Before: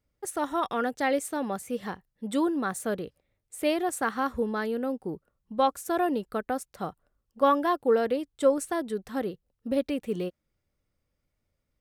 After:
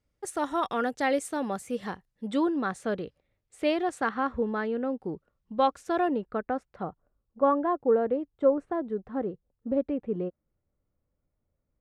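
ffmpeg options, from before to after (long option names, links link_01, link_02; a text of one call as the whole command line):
ffmpeg -i in.wav -af "asetnsamples=nb_out_samples=441:pad=0,asendcmd='2.31 lowpass f 4800;4.09 lowpass f 2700;4.99 lowpass f 4400;6.08 lowpass f 2000;6.83 lowpass f 1100',lowpass=9400" out.wav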